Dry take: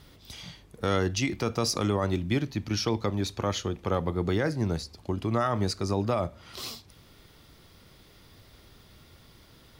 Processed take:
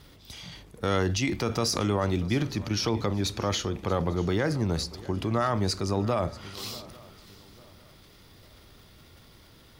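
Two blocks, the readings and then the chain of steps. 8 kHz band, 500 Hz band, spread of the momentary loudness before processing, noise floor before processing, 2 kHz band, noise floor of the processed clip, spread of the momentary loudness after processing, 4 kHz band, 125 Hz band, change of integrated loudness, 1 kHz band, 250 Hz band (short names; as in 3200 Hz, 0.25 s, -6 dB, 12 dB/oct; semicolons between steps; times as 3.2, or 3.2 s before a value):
+2.0 dB, +0.5 dB, 12 LU, -56 dBFS, +1.0 dB, -54 dBFS, 12 LU, +2.0 dB, +1.0 dB, +1.0 dB, +1.0 dB, +0.5 dB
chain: transient shaper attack 0 dB, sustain +7 dB; swung echo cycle 0.849 s, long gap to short 3:1, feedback 30%, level -20 dB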